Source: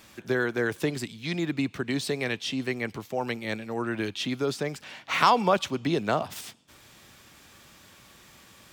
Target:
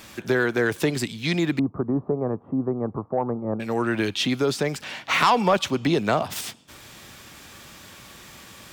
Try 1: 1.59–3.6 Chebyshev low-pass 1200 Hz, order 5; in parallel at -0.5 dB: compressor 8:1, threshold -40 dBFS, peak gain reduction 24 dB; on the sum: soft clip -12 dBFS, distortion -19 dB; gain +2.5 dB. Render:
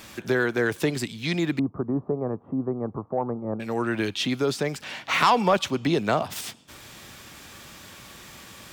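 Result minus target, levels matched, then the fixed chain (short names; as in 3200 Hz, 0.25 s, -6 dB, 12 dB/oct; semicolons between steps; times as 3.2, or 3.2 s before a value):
compressor: peak gain reduction +9 dB
1.59–3.6 Chebyshev low-pass 1200 Hz, order 5; in parallel at -0.5 dB: compressor 8:1, threshold -29.5 dBFS, peak gain reduction 15 dB; on the sum: soft clip -12 dBFS, distortion -18 dB; gain +2.5 dB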